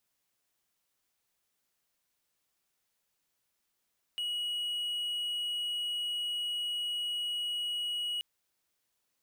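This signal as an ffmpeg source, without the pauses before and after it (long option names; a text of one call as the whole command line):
ffmpeg -f lavfi -i "aevalsrc='0.0335*(1-4*abs(mod(2910*t+0.25,1)-0.5))':duration=4.03:sample_rate=44100" out.wav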